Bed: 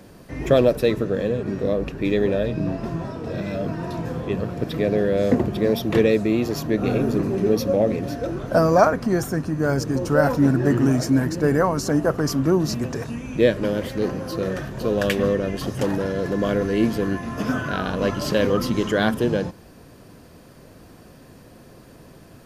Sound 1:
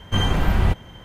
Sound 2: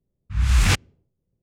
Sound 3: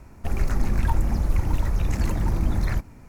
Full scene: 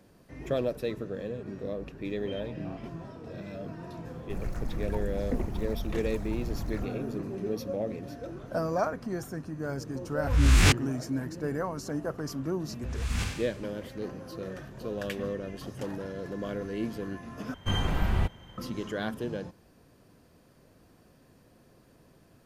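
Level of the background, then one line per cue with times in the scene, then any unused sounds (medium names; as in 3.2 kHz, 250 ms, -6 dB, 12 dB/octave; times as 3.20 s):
bed -13 dB
2.15 s: add 1 -11 dB + stepped vowel filter 8 Hz
4.05 s: add 3 -12 dB
9.97 s: add 2 -3 dB + reverse spectral sustain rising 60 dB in 0.38 s
12.49 s: add 2 -15.5 dB + Schroeder reverb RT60 1 s, combs from 31 ms, DRR 0 dB
17.54 s: replace with 1 -8 dB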